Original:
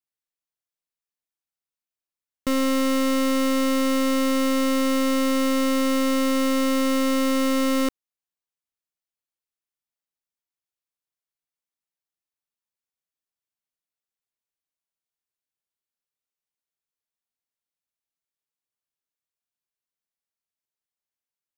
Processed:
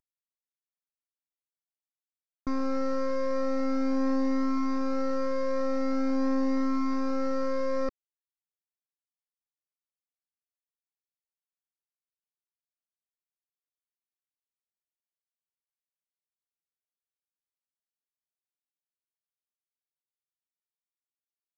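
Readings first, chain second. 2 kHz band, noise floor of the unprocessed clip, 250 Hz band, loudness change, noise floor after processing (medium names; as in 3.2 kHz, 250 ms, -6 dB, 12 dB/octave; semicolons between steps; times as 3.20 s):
-13.0 dB, under -85 dBFS, -7.5 dB, -7.5 dB, under -85 dBFS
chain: CVSD coder 32 kbps; peaking EQ 3.3 kHz -9 dB 0.65 oct; Shepard-style flanger rising 0.45 Hz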